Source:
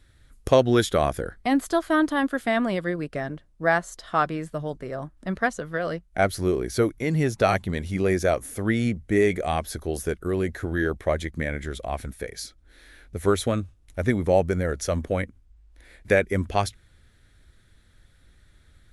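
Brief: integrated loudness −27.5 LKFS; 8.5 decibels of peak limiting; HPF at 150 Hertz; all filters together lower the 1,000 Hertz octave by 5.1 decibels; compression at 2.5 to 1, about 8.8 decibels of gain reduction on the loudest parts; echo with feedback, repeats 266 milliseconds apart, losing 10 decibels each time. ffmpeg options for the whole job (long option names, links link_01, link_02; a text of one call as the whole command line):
ffmpeg -i in.wav -af "highpass=150,equalizer=frequency=1000:width_type=o:gain=-8,acompressor=threshold=-29dB:ratio=2.5,alimiter=limit=-21.5dB:level=0:latency=1,aecho=1:1:266|532|798|1064:0.316|0.101|0.0324|0.0104,volume=6.5dB" out.wav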